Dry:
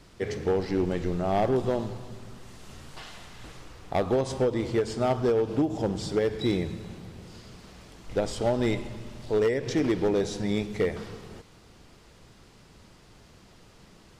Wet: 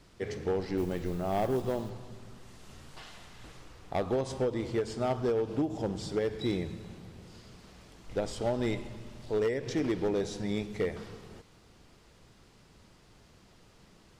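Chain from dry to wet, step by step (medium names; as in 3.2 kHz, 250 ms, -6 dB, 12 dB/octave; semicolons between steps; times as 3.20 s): 0.77–1.90 s: modulation noise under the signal 27 dB; trim -5 dB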